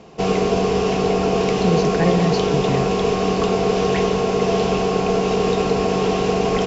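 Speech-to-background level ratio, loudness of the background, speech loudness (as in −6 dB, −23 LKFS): −4.5 dB, −19.0 LKFS, −23.5 LKFS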